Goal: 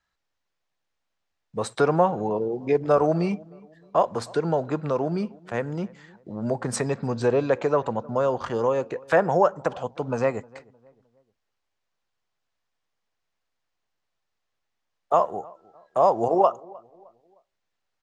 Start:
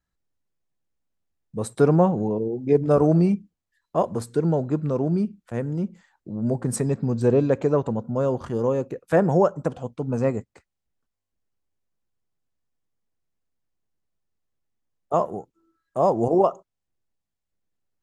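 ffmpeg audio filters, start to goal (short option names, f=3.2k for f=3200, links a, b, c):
-filter_complex "[0:a]acrossover=split=570 6500:gain=0.2 1 0.0794[a][b][c];[a][b][c]amix=inputs=3:normalize=0,asplit=2[d][e];[e]acompressor=threshold=-32dB:ratio=6,volume=2.5dB[f];[d][f]amix=inputs=2:normalize=0,asplit=2[g][h];[h]adelay=308,lowpass=f=1.2k:p=1,volume=-23dB,asplit=2[i][j];[j]adelay=308,lowpass=f=1.2k:p=1,volume=0.41,asplit=2[k][l];[l]adelay=308,lowpass=f=1.2k:p=1,volume=0.41[m];[g][i][k][m]amix=inputs=4:normalize=0,volume=2dB"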